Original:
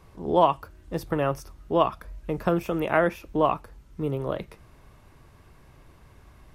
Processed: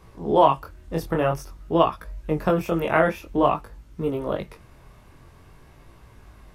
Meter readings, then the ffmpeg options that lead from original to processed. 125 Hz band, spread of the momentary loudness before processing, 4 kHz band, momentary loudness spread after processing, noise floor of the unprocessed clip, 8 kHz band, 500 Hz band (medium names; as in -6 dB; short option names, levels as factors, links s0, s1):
+2.5 dB, 13 LU, +3.0 dB, 13 LU, -55 dBFS, no reading, +3.0 dB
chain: -af "flanger=delay=17.5:depth=7.1:speed=0.5,volume=2"